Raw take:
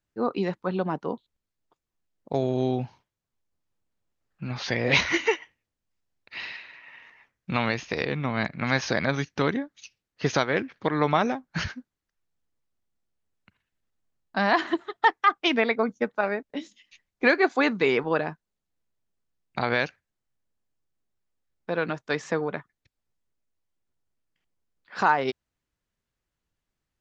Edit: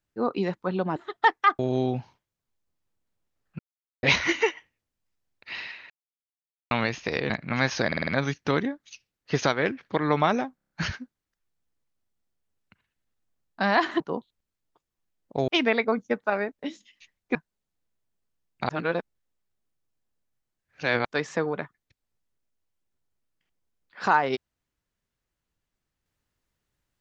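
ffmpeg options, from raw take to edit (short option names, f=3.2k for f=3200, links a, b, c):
-filter_complex "[0:a]asplit=22[a][b][c][d][e][f][g][h][i][j][k][l][m][n][o][p][q][r][s][t][u][v];[a]atrim=end=0.962[w];[b]atrim=start=14.758:end=15.392[x];[c]atrim=start=2.438:end=4.44,asetpts=PTS-STARTPTS,afade=t=out:st=1.998:d=0.004:c=hsin[y];[d]atrim=start=4.44:end=4.88,asetpts=PTS-STARTPTS,volume=0[z];[e]atrim=start=4.88:end=6.75,asetpts=PTS-STARTPTS,afade=t=in:d=0.004:c=hsin,afade=t=out:st=1.866:d=0.004:c=hsin[aa];[f]atrim=start=6.75:end=7.56,asetpts=PTS-STARTPTS,volume=0[ab];[g]atrim=start=7.56:end=8.152,asetpts=PTS-STARTPTS,afade=t=in:d=0.004:c=hsin[ac];[h]atrim=start=8.408:end=9.032[ad];[i]atrim=start=8.978:end=9.032[ae];[j]atrim=start=8.978:end=9.032[af];[k]atrim=start=8.978:end=9.032[ag];[l]atrim=start=8.978:end=11.492[ah];[m]atrim=start=11.458:end=11.492[ai];[n]atrim=start=11.458:end=11.492[aj];[o]atrim=start=11.458:end=11.492[ak];[p]atrim=start=11.458:end=11.492[al];[q]atrim=start=11.458:end=14.762[am];[r]atrim=start=0.958:end=2.442[an];[s]atrim=start=15.388:end=17.262[ao];[t]atrim=start=18.298:end=19.642[ap];[u]atrim=start=19.638:end=22.002,asetpts=PTS-STARTPTS,areverse[aq];[v]atrim=start=21.998[ar];[w][x]acrossfade=d=0.004:c1=hsin:c2=hsin[as];[y][z][aa][ab][ac]concat=n=5:v=0:a=1[at];[as][at]acrossfade=d=0.004:c1=hsin:c2=hsin[au];[au][ad]acrossfade=d=0.004:c1=hsin:c2=hsin[av];[av][ae]acrossfade=d=0.004:c1=hsin:c2=hsin[aw];[aw][af]acrossfade=d=0.004:c1=hsin:c2=hsin[ax];[ax][ag]acrossfade=d=0.004:c1=hsin:c2=hsin[ay];[ay][ah]acrossfade=d=0.004:c1=hsin:c2=hsin[az];[az][ai]acrossfade=d=0.004:c1=hsin:c2=hsin[ba];[ba][aj]acrossfade=d=0.004:c1=hsin:c2=hsin[bb];[bb][ak]acrossfade=d=0.004:c1=hsin:c2=hsin[bc];[bc][al]acrossfade=d=0.004:c1=hsin:c2=hsin[bd];[bd][am]acrossfade=d=0.004:c1=hsin:c2=hsin[be];[be][an]acrossfade=d=0.004:c1=hsin:c2=hsin[bf];[bf][ao]acrossfade=d=0.004:c1=hsin:c2=hsin[bg];[bg][ap]acrossfade=d=0.004:c1=hsin:c2=hsin[bh];[bh][aq]acrossfade=d=0.004:c1=hsin:c2=hsin[bi];[bi][ar]acrossfade=d=0.004:c1=hsin:c2=hsin"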